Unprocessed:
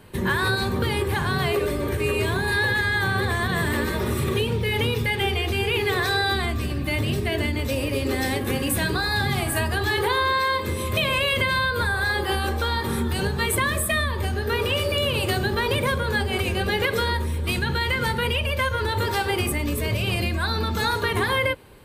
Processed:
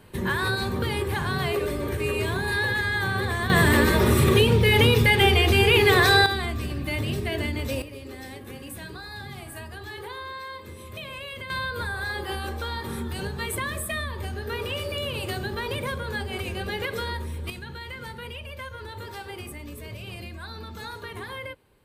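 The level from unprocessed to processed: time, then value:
−3 dB
from 0:03.50 +5.5 dB
from 0:06.26 −3.5 dB
from 0:07.82 −15 dB
from 0:11.50 −7 dB
from 0:17.50 −14 dB

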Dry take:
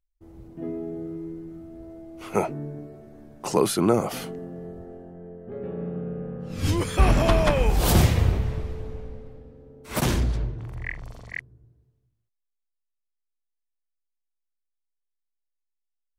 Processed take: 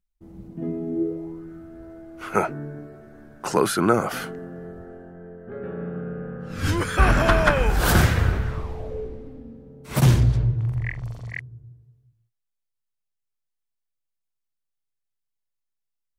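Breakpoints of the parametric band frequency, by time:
parametric band +14 dB 0.57 octaves
0:00.84 190 Hz
0:01.47 1,500 Hz
0:08.48 1,500 Hz
0:09.10 350 Hz
0:10.12 120 Hz

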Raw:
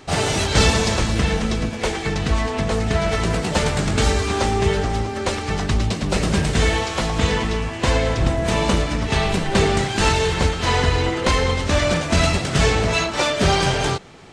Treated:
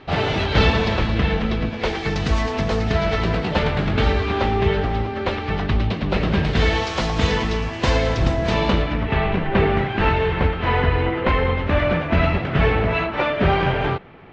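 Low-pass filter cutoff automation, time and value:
low-pass filter 24 dB per octave
0:01.61 3,700 Hz
0:02.32 6,500 Hz
0:03.70 3,600 Hz
0:06.33 3,600 Hz
0:06.91 5,900 Hz
0:08.33 5,900 Hz
0:09.14 2,700 Hz

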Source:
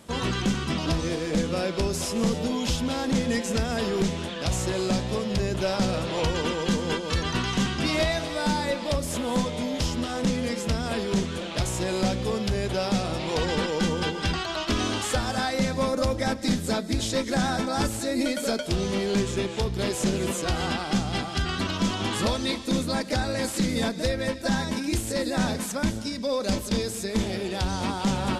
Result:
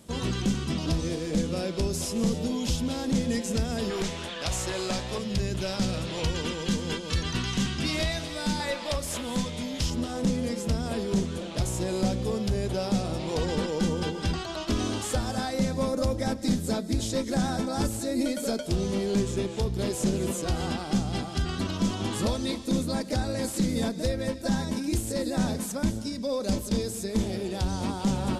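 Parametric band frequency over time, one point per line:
parametric band −8 dB 2.8 octaves
1,400 Hz
from 0:03.90 180 Hz
from 0:05.18 800 Hz
from 0:08.60 200 Hz
from 0:09.21 650 Hz
from 0:09.90 2,000 Hz

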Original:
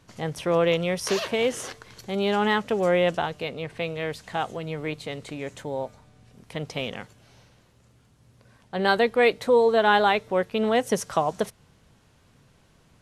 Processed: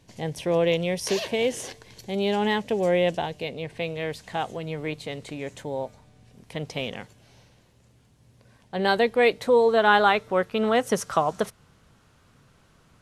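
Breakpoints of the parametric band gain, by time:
parametric band 1,300 Hz 0.44 octaves
0:03.46 −14 dB
0:04.15 −5 dB
0:09.19 −5 dB
0:10.04 +6 dB

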